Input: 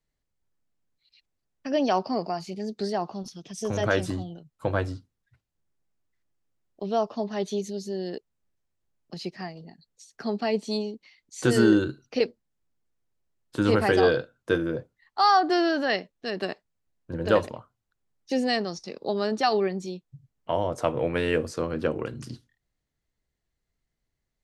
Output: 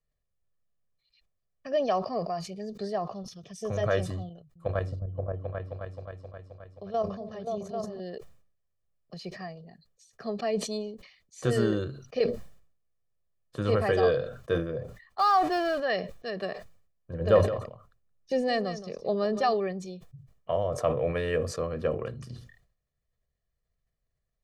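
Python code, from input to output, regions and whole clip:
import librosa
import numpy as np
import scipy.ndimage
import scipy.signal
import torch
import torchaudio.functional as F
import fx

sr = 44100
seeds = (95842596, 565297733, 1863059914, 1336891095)

y = fx.chain(x, sr, fx.level_steps(step_db=12),
    fx.echo_opening(ms=264, hz=200, octaves=2, feedback_pct=70, wet_db=0), at=(4.29, 8.0))
y = fx.chain(y, sr, fx.zero_step(step_db=-31.5),
    fx.resample_linear(factor=2), at=(15.19, 15.8))
y = fx.chain(y, sr, fx.low_shelf(hz=460.0, db=5.0),
    fx.echo_single(ms=171, db=-13.0), at=(17.21, 19.54))
y = fx.high_shelf(y, sr, hz=2100.0, db=-7.0)
y = y + 0.65 * np.pad(y, (int(1.7 * sr / 1000.0), 0))[:len(y)]
y = fx.sustainer(y, sr, db_per_s=92.0)
y = y * librosa.db_to_amplitude(-4.0)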